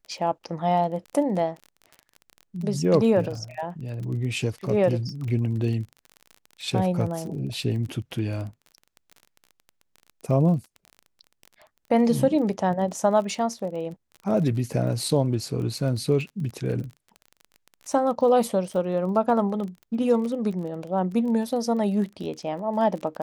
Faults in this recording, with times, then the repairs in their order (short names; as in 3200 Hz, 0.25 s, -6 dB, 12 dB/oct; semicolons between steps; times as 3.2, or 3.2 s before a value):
crackle 27/s -33 dBFS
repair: de-click